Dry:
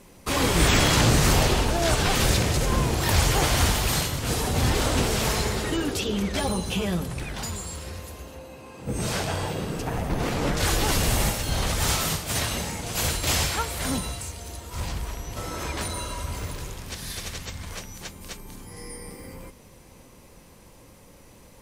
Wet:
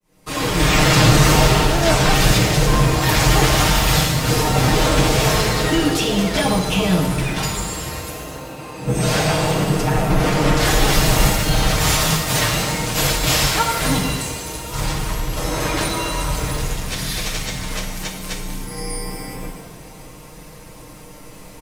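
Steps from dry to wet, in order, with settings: fade-in on the opening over 0.96 s; dynamic bell 9.4 kHz, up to -4 dB, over -40 dBFS, Q 0.9; in parallel at -1.5 dB: gain riding within 4 dB 0.5 s; on the sum: comb 6.5 ms, depth 70%; pitch-shifted reverb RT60 1.2 s, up +7 st, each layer -8 dB, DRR 3 dB

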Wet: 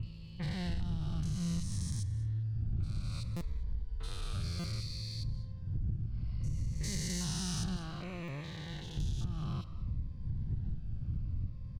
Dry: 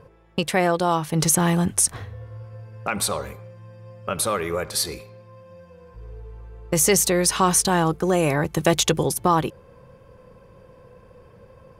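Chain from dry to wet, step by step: spectrogram pixelated in time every 400 ms; wind noise 180 Hz -33 dBFS; 7.76–8.97 s: tone controls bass -14 dB, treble -14 dB; bands offset in time lows, highs 30 ms, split 2.6 kHz; on a send at -16 dB: reverberation RT60 0.70 s, pre-delay 146 ms; 5.78–6.61 s: on the sum: spectral replace 570–5500 Hz both; FFT filter 110 Hz 0 dB, 440 Hz -28 dB, 4.4 kHz -5 dB, 12 kHz -27 dB; 3.39–4.34 s: frequency shift -77 Hz; compression 12:1, threshold -33 dBFS, peak gain reduction 15.5 dB; waveshaping leveller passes 1; buffer glitch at 3.36/4.59/8.23 s, samples 256, times 8; Shepard-style phaser falling 0.61 Hz

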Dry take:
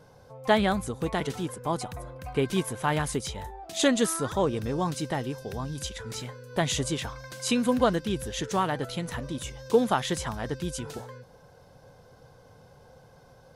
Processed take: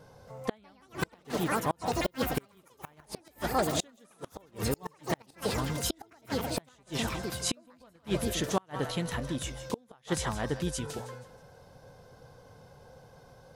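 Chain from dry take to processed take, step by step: ever faster or slower copies 273 ms, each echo +5 st, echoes 3; thinning echo 160 ms, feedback 37%, high-pass 380 Hz, level -12.5 dB; inverted gate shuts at -16 dBFS, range -35 dB

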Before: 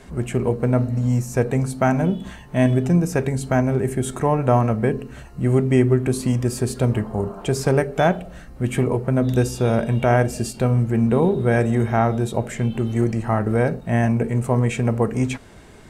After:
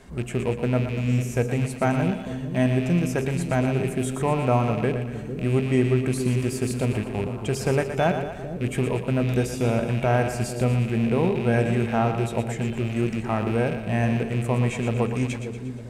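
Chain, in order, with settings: rattle on loud lows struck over -24 dBFS, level -23 dBFS; two-band feedback delay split 520 Hz, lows 452 ms, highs 118 ms, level -8.5 dB; trim -4.5 dB

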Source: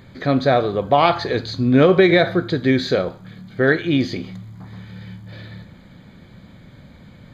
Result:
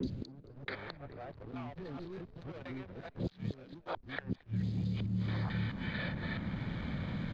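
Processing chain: time reversed locally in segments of 219 ms; treble shelf 3.3 kHz +11 dB; saturation -16 dBFS, distortion -8 dB; inverted gate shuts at -24 dBFS, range -34 dB; three bands offset in time lows, highs, mids 30/680 ms, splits 500/5000 Hz; hysteresis with a dead band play -52.5 dBFS; distance through air 230 m; frequency-shifting echo 220 ms, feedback 36%, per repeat +77 Hz, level -24 dB; three bands compressed up and down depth 70%; trim +4.5 dB

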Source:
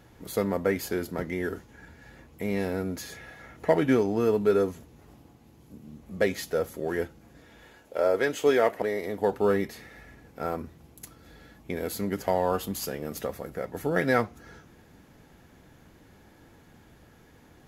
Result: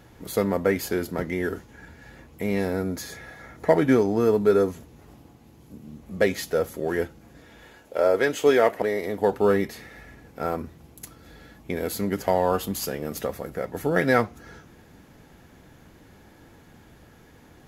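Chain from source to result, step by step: 2.60–4.70 s: peaking EQ 2.8 kHz -7 dB 0.33 oct; trim +3.5 dB

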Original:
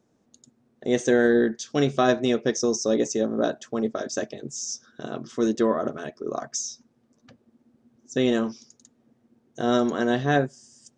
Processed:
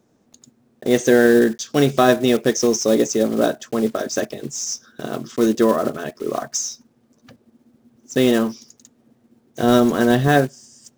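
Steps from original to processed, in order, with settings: block-companded coder 5-bit; 9.63–10.28 s: bass shelf 120 Hz +10.5 dB; trim +6 dB

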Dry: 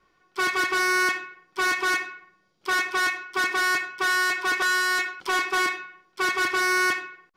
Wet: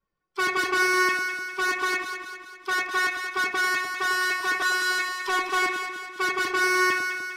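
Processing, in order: expander on every frequency bin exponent 1.5; gain riding within 3 dB 2 s; echo whose repeats swap between lows and highs 100 ms, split 1 kHz, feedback 72%, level -4 dB

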